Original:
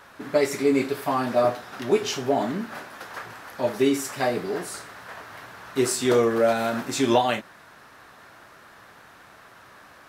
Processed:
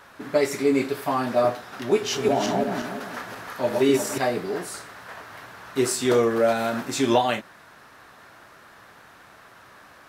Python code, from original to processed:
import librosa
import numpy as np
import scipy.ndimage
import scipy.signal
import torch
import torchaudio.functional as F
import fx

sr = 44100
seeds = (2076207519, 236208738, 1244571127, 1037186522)

y = fx.reverse_delay_fb(x, sr, ms=178, feedback_pct=51, wet_db=-2, at=(1.93, 4.18))